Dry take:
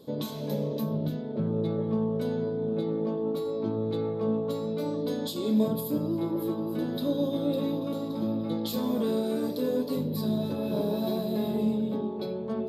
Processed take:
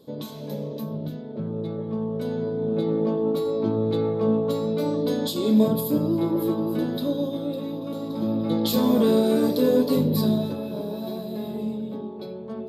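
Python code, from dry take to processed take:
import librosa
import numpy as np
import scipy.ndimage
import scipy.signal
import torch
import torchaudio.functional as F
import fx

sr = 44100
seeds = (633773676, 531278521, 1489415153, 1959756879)

y = fx.gain(x, sr, db=fx.line((1.86, -1.5), (2.94, 6.0), (6.7, 6.0), (7.64, -2.5), (8.71, 8.5), (10.2, 8.5), (10.73, -2.5)))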